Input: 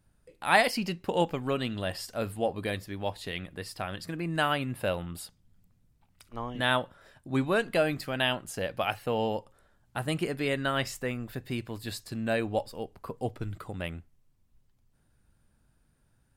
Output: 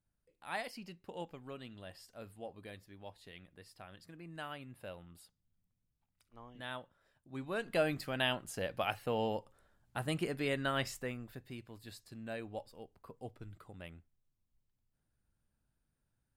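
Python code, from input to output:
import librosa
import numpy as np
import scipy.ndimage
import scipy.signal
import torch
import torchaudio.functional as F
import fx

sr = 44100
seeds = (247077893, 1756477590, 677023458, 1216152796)

y = fx.gain(x, sr, db=fx.line((7.31, -17.5), (7.8, -5.5), (10.89, -5.5), (11.57, -14.0)))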